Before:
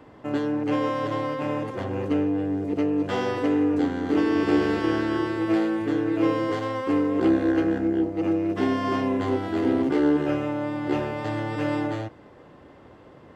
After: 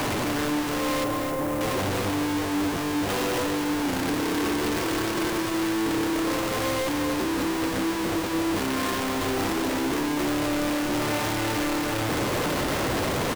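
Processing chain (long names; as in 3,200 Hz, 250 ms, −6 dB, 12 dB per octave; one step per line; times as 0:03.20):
sign of each sample alone
0:01.04–0:01.61: parametric band 4,100 Hz −12.5 dB 2.3 octaves
single-tap delay 268 ms −7.5 dB
level −2 dB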